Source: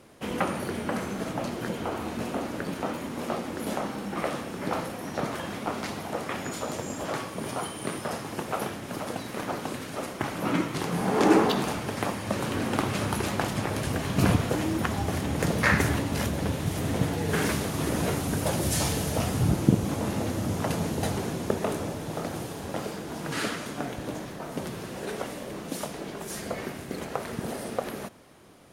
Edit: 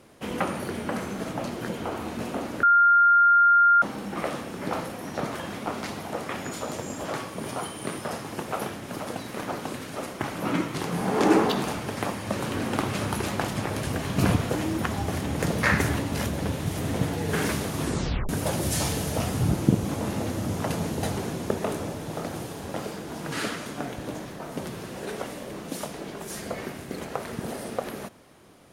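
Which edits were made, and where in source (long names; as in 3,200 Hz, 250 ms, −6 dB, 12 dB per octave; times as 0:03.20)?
0:02.63–0:03.82: beep over 1,400 Hz −14 dBFS
0:17.83: tape stop 0.46 s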